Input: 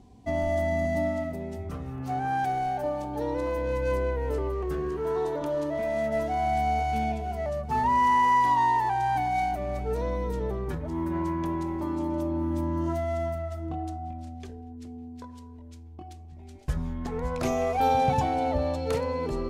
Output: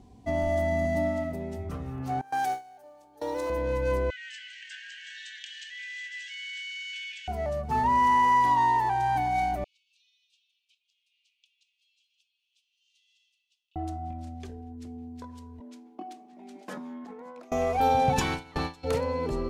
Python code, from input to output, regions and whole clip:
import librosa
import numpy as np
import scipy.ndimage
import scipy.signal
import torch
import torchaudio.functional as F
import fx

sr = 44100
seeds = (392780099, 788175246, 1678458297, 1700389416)

y = fx.chain(x, sr, fx.gate_hold(open_db=-20.0, close_db=-26.0, hold_ms=71.0, range_db=-21, attack_ms=1.4, release_ms=100.0),
    fx.bass_treble(bass_db=-15, treble_db=9),
    fx.mod_noise(seeds[0], snr_db=34), at=(2.21, 3.5))
y = fx.chain(y, sr, fx.brickwall_bandpass(low_hz=1500.0, high_hz=8300.0),
    fx.peak_eq(hz=3000.0, db=11.5, octaves=0.35),
    fx.env_flatten(amount_pct=50), at=(4.1, 7.28))
y = fx.chain(y, sr, fx.steep_highpass(hz=2600.0, slope=96),
    fx.spacing_loss(db_at_10k=29), at=(9.64, 13.76))
y = fx.chain(y, sr, fx.cheby_ripple_highpass(hz=190.0, ripple_db=3),
    fx.over_compress(threshold_db=-42.0, ratio=-1.0),
    fx.high_shelf(hz=5100.0, db=-5.5), at=(15.6, 17.52))
y = fx.spec_clip(y, sr, under_db=20, at=(18.16, 18.83), fade=0.02)
y = fx.gate_hold(y, sr, open_db=-17.0, close_db=-21.0, hold_ms=71.0, range_db=-21, attack_ms=1.4, release_ms=100.0, at=(18.16, 18.83), fade=0.02)
y = fx.peak_eq(y, sr, hz=610.0, db=-14.0, octaves=0.42, at=(18.16, 18.83), fade=0.02)